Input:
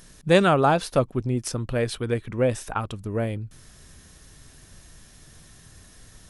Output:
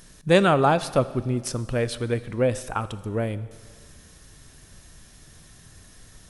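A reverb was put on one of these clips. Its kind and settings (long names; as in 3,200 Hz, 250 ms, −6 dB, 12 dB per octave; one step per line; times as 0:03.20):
four-comb reverb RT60 1.9 s, combs from 29 ms, DRR 15.5 dB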